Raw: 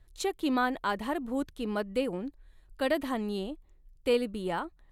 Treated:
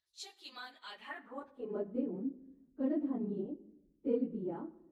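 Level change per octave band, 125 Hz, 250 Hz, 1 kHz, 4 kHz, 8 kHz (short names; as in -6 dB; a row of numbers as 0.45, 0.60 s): -6.0 dB, -4.5 dB, -17.0 dB, under -10 dB, under -10 dB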